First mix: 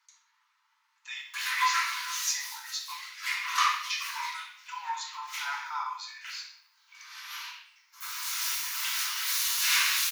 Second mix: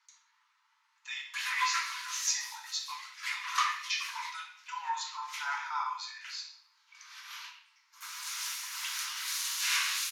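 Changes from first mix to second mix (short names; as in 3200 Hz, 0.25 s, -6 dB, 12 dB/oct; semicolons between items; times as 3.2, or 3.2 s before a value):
background: send -9.5 dB; master: add LPF 11000 Hz 12 dB/oct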